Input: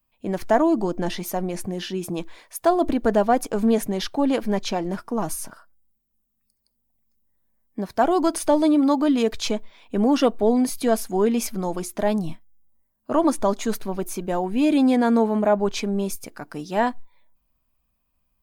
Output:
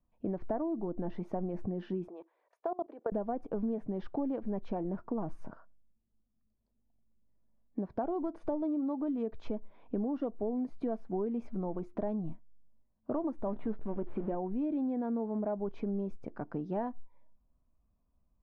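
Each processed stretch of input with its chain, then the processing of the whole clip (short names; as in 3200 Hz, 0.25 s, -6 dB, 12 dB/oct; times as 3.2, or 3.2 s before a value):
2.08–3.12 HPF 410 Hz 24 dB/oct + level quantiser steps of 22 dB
13.46–14.35 zero-crossing step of -29 dBFS + LPF 3600 Hz 24 dB/oct + doubler 14 ms -10 dB
whole clip: Bessel low-pass 650 Hz, order 2; compressor 6:1, threshold -32 dBFS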